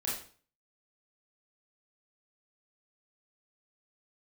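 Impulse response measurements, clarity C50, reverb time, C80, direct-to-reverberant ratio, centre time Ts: 3.5 dB, 0.45 s, 8.0 dB, −6.5 dB, 45 ms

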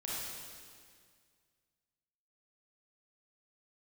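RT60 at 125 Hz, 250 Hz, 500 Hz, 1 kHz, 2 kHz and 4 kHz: 2.3, 2.2, 2.0, 1.9, 1.9, 1.9 seconds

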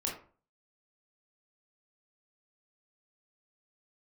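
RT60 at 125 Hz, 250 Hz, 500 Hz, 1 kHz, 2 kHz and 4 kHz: 0.50, 0.45, 0.40, 0.40, 0.35, 0.25 seconds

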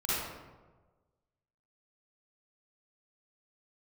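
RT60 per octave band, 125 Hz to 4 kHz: 1.5, 1.3, 1.4, 1.2, 0.90, 0.65 seconds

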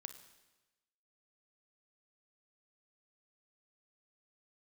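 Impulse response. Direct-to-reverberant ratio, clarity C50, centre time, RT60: 8.5 dB, 10.0 dB, 13 ms, 1.1 s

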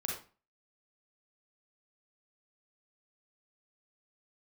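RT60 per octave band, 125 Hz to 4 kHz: 0.45, 0.40, 0.35, 0.35, 0.35, 0.30 seconds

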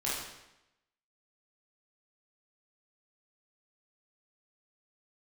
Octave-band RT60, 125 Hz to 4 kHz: 0.90, 0.90, 0.90, 0.90, 0.90, 0.80 seconds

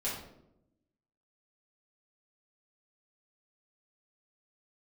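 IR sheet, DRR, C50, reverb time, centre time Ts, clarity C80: −8.0 dB, 3.0 dB, 0.80 s, 47 ms, 7.0 dB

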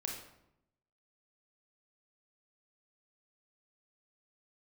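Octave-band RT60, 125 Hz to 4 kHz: 1.1, 1.0, 0.85, 0.80, 0.65, 0.55 seconds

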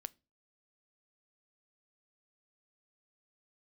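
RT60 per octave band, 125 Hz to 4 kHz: 0.40, 0.35, 0.35, 0.25, 0.25, 0.25 seconds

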